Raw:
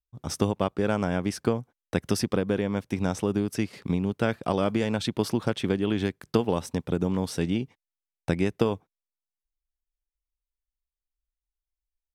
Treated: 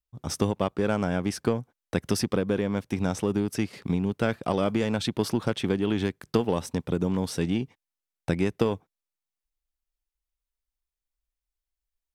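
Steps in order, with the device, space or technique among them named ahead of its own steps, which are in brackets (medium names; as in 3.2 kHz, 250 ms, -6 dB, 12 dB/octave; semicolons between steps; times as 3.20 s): parallel distortion (in parallel at -9.5 dB: hard clipper -25 dBFS, distortion -6 dB); on the sum: trim -1.5 dB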